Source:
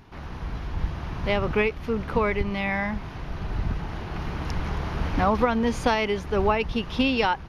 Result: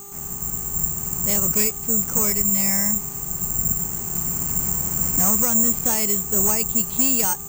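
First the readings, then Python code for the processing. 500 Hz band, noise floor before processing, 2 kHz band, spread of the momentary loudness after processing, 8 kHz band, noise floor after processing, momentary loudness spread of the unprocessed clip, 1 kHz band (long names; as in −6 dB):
−6.5 dB, −38 dBFS, −7.0 dB, 7 LU, +32.0 dB, −33 dBFS, 11 LU, −7.0 dB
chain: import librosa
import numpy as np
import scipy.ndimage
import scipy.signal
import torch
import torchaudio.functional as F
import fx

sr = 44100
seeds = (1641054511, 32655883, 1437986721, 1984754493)

y = fx.dmg_buzz(x, sr, base_hz=400.0, harmonics=3, level_db=-42.0, tilt_db=-2, odd_only=False)
y = fx.peak_eq(y, sr, hz=180.0, db=10.5, octaves=0.98)
y = (np.kron(scipy.signal.resample_poly(y, 1, 6), np.eye(6)[0]) * 6)[:len(y)]
y = fx.quant_dither(y, sr, seeds[0], bits=8, dither='triangular')
y = y * 10.0 ** (-6.5 / 20.0)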